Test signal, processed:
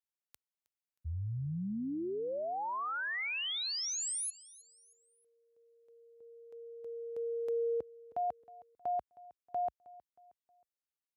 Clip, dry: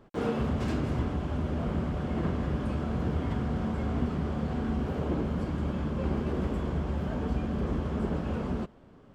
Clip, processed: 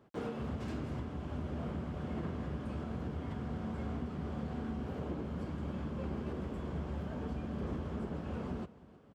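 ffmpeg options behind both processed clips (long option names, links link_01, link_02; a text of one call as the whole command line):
ffmpeg -i in.wav -af "highpass=frequency=57:width=0.5412,highpass=frequency=57:width=1.3066,alimiter=limit=-22.5dB:level=0:latency=1:release=461,aecho=1:1:315|630|945:0.1|0.04|0.016,volume=-6.5dB" out.wav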